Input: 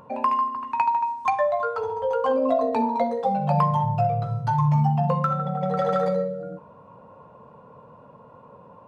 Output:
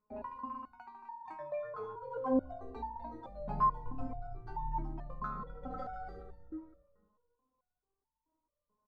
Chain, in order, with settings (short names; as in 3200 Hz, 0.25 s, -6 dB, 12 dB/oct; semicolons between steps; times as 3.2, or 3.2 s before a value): octaver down 2 oct, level -1 dB; gate -40 dBFS, range -23 dB; EQ curve 120 Hz 0 dB, 200 Hz -4 dB, 300 Hz +7 dB, 520 Hz -6 dB, 910 Hz -4 dB, 1400 Hz 0 dB, 2900 Hz -14 dB, 4200 Hz -9 dB, 6300 Hz -14 dB; feedback echo 0.255 s, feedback 30%, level -12 dB; spring tank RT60 1.4 s, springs 40/55 ms, chirp 60 ms, DRR 18 dB; stepped resonator 4.6 Hz 210–900 Hz; gain +3 dB